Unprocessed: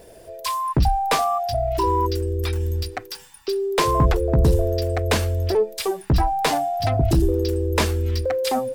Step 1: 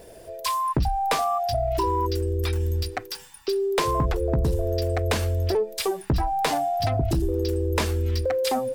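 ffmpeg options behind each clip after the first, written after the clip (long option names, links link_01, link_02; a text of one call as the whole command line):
ffmpeg -i in.wav -af "acompressor=threshold=-20dB:ratio=5" out.wav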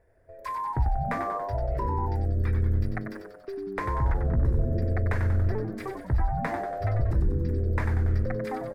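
ffmpeg -i in.wav -filter_complex "[0:a]agate=range=-11dB:threshold=-39dB:ratio=16:detection=peak,firequalizer=gain_entry='entry(110,0);entry(160,-13);entry(1900,-1);entry(2900,-24)':delay=0.05:min_phase=1,asplit=2[link_01][link_02];[link_02]asplit=8[link_03][link_04][link_05][link_06][link_07][link_08][link_09][link_10];[link_03]adelay=94,afreqshift=-100,volume=-6.5dB[link_11];[link_04]adelay=188,afreqshift=-200,volume=-10.8dB[link_12];[link_05]adelay=282,afreqshift=-300,volume=-15.1dB[link_13];[link_06]adelay=376,afreqshift=-400,volume=-19.4dB[link_14];[link_07]adelay=470,afreqshift=-500,volume=-23.7dB[link_15];[link_08]adelay=564,afreqshift=-600,volume=-28dB[link_16];[link_09]adelay=658,afreqshift=-700,volume=-32.3dB[link_17];[link_10]adelay=752,afreqshift=-800,volume=-36.6dB[link_18];[link_11][link_12][link_13][link_14][link_15][link_16][link_17][link_18]amix=inputs=8:normalize=0[link_19];[link_01][link_19]amix=inputs=2:normalize=0" out.wav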